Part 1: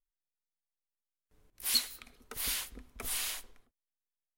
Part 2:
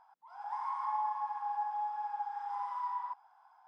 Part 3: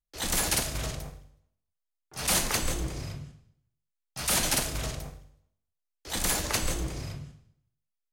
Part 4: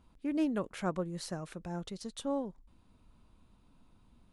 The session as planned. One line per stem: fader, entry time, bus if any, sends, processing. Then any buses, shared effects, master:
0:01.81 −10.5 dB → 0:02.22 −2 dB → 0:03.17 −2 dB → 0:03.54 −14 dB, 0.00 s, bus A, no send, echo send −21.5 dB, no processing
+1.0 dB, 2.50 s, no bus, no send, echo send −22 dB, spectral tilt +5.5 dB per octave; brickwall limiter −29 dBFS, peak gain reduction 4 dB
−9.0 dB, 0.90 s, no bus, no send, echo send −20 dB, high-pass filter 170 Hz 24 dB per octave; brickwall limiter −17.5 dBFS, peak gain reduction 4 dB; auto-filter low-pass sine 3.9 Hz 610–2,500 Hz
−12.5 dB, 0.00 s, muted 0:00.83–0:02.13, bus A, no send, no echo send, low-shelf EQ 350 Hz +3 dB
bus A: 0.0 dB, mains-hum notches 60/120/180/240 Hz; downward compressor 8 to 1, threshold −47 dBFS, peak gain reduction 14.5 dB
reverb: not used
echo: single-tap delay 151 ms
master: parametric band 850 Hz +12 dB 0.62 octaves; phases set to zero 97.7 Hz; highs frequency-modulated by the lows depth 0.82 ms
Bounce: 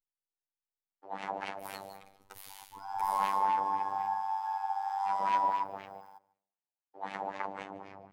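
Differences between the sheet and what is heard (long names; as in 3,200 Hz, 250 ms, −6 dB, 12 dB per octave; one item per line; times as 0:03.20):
stem 4: muted
master: missing highs frequency-modulated by the lows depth 0.82 ms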